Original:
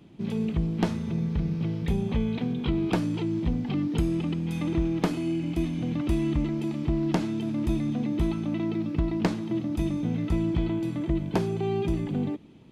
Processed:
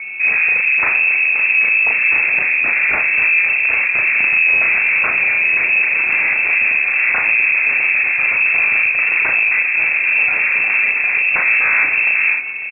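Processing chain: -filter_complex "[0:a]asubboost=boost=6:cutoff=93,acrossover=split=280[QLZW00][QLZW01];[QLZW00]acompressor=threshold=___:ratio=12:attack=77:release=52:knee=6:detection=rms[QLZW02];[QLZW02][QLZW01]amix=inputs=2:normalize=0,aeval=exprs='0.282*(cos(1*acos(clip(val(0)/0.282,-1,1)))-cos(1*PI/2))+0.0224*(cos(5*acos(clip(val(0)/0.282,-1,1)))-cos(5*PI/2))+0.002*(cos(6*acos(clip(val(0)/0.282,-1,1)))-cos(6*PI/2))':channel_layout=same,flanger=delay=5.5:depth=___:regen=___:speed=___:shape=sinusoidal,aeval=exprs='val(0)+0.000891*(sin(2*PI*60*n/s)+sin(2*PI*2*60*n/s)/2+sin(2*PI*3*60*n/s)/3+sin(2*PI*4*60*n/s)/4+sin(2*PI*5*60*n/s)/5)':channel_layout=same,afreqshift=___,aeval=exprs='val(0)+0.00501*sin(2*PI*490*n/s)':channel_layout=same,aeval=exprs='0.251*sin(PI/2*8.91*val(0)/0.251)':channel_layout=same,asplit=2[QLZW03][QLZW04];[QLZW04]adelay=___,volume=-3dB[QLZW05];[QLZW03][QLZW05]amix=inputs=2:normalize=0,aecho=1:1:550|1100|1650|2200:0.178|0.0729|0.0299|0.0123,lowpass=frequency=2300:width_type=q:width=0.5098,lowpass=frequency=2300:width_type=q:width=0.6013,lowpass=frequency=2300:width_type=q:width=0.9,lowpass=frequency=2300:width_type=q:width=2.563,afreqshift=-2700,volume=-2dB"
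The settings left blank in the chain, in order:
-25dB, 9.8, -85, 0.41, -29, 36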